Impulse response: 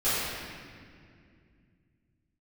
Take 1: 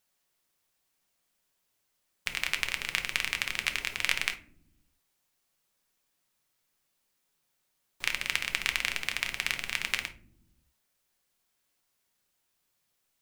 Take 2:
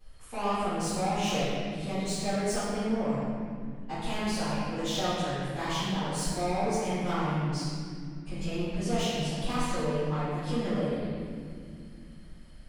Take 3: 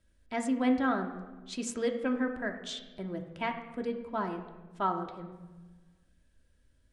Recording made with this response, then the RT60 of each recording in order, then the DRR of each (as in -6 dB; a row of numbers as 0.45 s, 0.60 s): 2; no single decay rate, 2.2 s, 1.2 s; 6.5 dB, -15.5 dB, 3.0 dB